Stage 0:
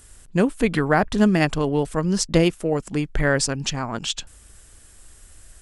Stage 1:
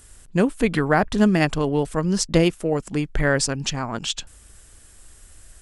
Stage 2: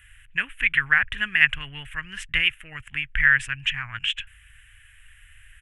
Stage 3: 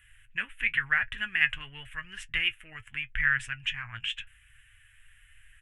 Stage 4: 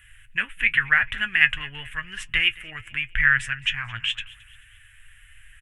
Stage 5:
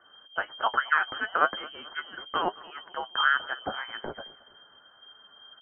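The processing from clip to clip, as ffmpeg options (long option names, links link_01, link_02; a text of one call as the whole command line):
ffmpeg -i in.wav -af anull out.wav
ffmpeg -i in.wav -af "firequalizer=gain_entry='entry(120,0);entry(170,-21);entry(460,-29);entry(1700,14);entry(2900,13);entry(4500,-22);entry(8100,-10);entry(12000,-4)':delay=0.05:min_phase=1,volume=-4dB" out.wav
ffmpeg -i in.wav -af "flanger=delay=7.6:depth=2:regen=50:speed=0.93:shape=triangular,volume=-2.5dB" out.wav
ffmpeg -i in.wav -af "aecho=1:1:218|436|654:0.0891|0.0374|0.0157,volume=7dB" out.wav
ffmpeg -i in.wav -af "lowpass=frequency=2700:width_type=q:width=0.5098,lowpass=frequency=2700:width_type=q:width=0.6013,lowpass=frequency=2700:width_type=q:width=0.9,lowpass=frequency=2700:width_type=q:width=2.563,afreqshift=-3200,volume=-5dB" out.wav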